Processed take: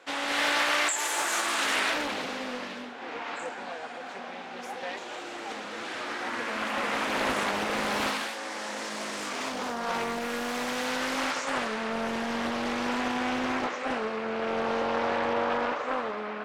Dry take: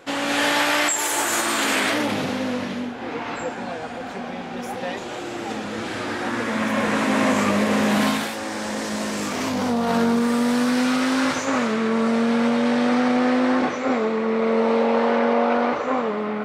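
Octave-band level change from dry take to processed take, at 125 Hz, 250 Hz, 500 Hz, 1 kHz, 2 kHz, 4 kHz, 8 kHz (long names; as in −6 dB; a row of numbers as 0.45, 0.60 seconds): −14.0, −14.0, −9.5, −6.0, −4.5, −4.5, −7.0 decibels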